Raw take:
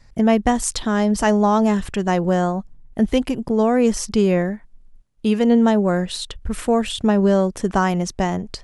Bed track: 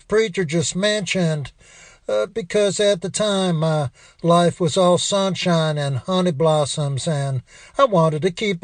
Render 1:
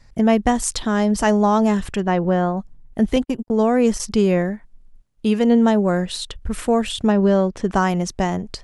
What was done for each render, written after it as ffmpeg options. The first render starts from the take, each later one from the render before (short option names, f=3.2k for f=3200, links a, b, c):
-filter_complex "[0:a]asettb=1/sr,asplit=3[a][b][c];[a]atrim=end=2.004[d];[b]atrim=start=2:end=2.57,asetpts=PTS-STARTPTS,afade=t=in:d=0.004:c=qsin,afade=t=out:st=0.566:d=0.004:c=qsin,lowpass=3.2k[e];[c]atrim=start=2.566[f];[d][e]acrossfade=d=0.004:c1=hsin:c2=qsin[g];[g][f]acrossfade=d=0.004:c1=qsin:c2=hsin,asettb=1/sr,asplit=3[h][i][j];[h]atrim=end=3.164[k];[i]atrim=start=3.16:end=4,asetpts=PTS-STARTPTS,afade=t=in:d=0.004:c=qsin,afade=t=out:st=0.836:d=0.004:c=qsin,agate=range=-56dB:threshold=-26dB:ratio=16:release=100:detection=peak[l];[j]atrim=start=3.996[m];[k][l]acrossfade=d=0.004:c1=hsin:c2=qsin[n];[n][m]acrossfade=d=0.004:c1=qsin:c2=hsin,asettb=1/sr,asplit=3[o][p][q];[o]atrim=end=7.124[r];[p]atrim=start=7.12:end=7.7,asetpts=PTS-STARTPTS,afade=t=in:d=0.004:c=qsin,afade=t=out:st=0.576:d=0.004:c=qsin,lowpass=4.9k[s];[q]atrim=start=7.696[t];[r][s]acrossfade=d=0.004:c1=hsin:c2=qsin[u];[u][t]acrossfade=d=0.004:c1=qsin:c2=hsin"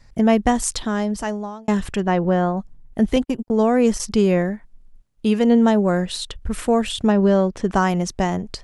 -filter_complex "[0:a]asplit=2[a][b];[a]atrim=end=1.68,asetpts=PTS-STARTPTS,afade=t=out:st=0.64:d=1.04[c];[b]atrim=start=1.68,asetpts=PTS-STARTPTS,afade=t=in:d=0.004:c=hsin[d];[c][d]concat=n=2:v=0:a=1"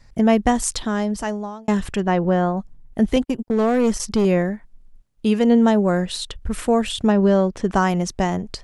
-filter_complex "[0:a]asettb=1/sr,asplit=3[a][b][c];[a]atrim=end=3.294[d];[b]atrim=start=3.29:end=4.25,asetpts=PTS-STARTPTS,afade=t=in:d=0.004:c=qsin,afade=t=out:st=0.956:d=0.004:c=qsin,asoftclip=type=hard:threshold=-13dB[e];[c]atrim=start=4.246[f];[d][e]acrossfade=d=0.004:c1=hsin:c2=qsin[g];[g][f]acrossfade=d=0.004:c1=qsin:c2=hsin"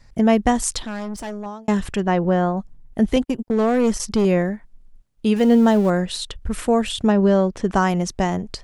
-filter_complex "[0:a]asettb=1/sr,asplit=3[a][b][c];[a]atrim=end=0.824[d];[b]atrim=start=0.82:end=1.46,asetpts=PTS-STARTPTS,afade=t=in:d=0.004:c=qsin,afade=t=out:st=0.636:d=0.004:c=qsin,aeval=exprs='(tanh(20*val(0)+0.45)-tanh(0.45))/20':c=same[e];[c]atrim=start=1.456[f];[d][e]acrossfade=d=0.004:c1=hsin:c2=qsin[g];[g][f]acrossfade=d=0.004:c1=qsin:c2=hsin,asettb=1/sr,asplit=3[h][i][j];[h]atrim=end=5.364[k];[i]atrim=start=5.36:end=5.9,asetpts=PTS-STARTPTS,afade=t=in:d=0.004:c=qsin,afade=t=out:st=0.536:d=0.004:c=qsin,aeval=exprs='val(0)+0.5*0.0316*sgn(val(0))':c=same[l];[j]atrim=start=5.896[m];[k][l]acrossfade=d=0.004:c1=hsin:c2=qsin[n];[n][m]acrossfade=d=0.004:c1=qsin:c2=hsin"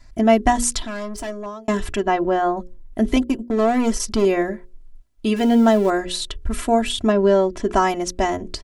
-af "bandreject=f=60:t=h:w=6,bandreject=f=120:t=h:w=6,bandreject=f=180:t=h:w=6,bandreject=f=240:t=h:w=6,bandreject=f=300:t=h:w=6,bandreject=f=360:t=h:w=6,bandreject=f=420:t=h:w=6,bandreject=f=480:t=h:w=6,bandreject=f=540:t=h:w=6,aecho=1:1:3:0.78"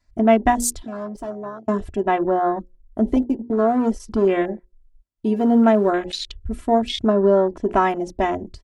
-af "highpass=f=55:p=1,afwtdn=0.0398"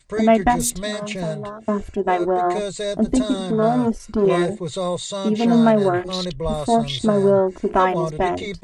-filter_complex "[1:a]volume=-8.5dB[a];[0:a][a]amix=inputs=2:normalize=0"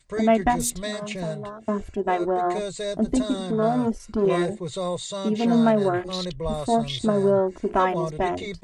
-af "volume=-4dB"